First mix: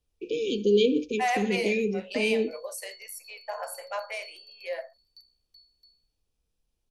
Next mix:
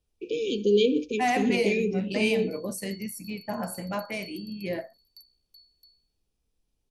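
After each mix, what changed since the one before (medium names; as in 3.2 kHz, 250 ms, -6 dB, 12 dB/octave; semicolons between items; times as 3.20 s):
second voice: remove elliptic high-pass 510 Hz, stop band 50 dB; background: remove low-pass 5.7 kHz 12 dB/octave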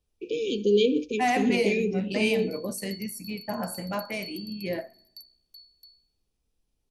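background +5.0 dB; reverb: on, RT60 1.0 s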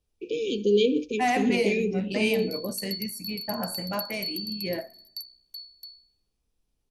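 background +9.0 dB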